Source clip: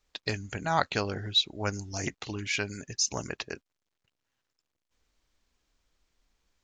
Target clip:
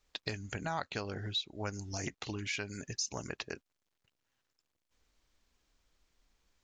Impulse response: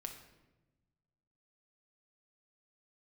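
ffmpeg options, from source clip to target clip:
-af "acompressor=threshold=-36dB:ratio=3"

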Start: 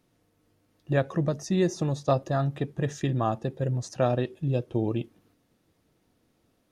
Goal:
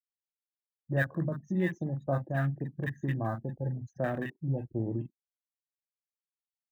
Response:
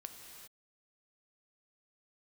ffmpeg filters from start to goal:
-filter_complex "[0:a]superequalizer=7b=0.631:11b=3.55:14b=0.631,afftfilt=real='re*gte(hypot(re,im),0.0178)':imag='im*gte(hypot(re,im),0.0178)':win_size=1024:overlap=0.75,afwtdn=0.0224,acrossover=split=290|1400[link_01][link_02][link_03];[link_01]asplit=2[link_04][link_05];[link_05]adelay=44,volume=-3dB[link_06];[link_04][link_06]amix=inputs=2:normalize=0[link_07];[link_03]acrusher=bits=5:mode=log:mix=0:aa=0.000001[link_08];[link_07][link_02][link_08]amix=inputs=3:normalize=0,acrossover=split=970[link_09][link_10];[link_10]adelay=40[link_11];[link_09][link_11]amix=inputs=2:normalize=0,volume=-6dB"

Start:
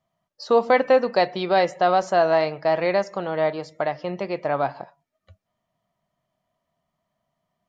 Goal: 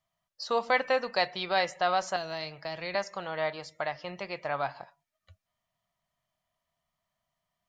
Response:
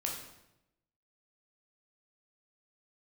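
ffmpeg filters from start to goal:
-filter_complex "[0:a]equalizer=frequency=300:width=0.42:gain=-14.5,asettb=1/sr,asplit=3[link_01][link_02][link_03];[link_01]atrim=end=2.164[link_04];[link_02]atrim=start=2.16:end=2.95,asetpts=PTS-STARTPTS,afade=type=in:duration=0.004:curve=qsin,afade=type=out:start_time=0.786:duration=0.004:curve=qsin,acrossover=split=360|3000[link_05][link_06][link_07];[link_06]acompressor=threshold=-38dB:ratio=6[link_08];[link_05][link_08][link_07]amix=inputs=3:normalize=0[link_09];[link_03]atrim=start=2.946[link_10];[link_04][link_09]acrossfade=duration=0.004:curve1=hsin:curve2=qsin[link_11];[link_11][link_10]acrossfade=duration=0.004:curve1=qsin:curve2=hsin"

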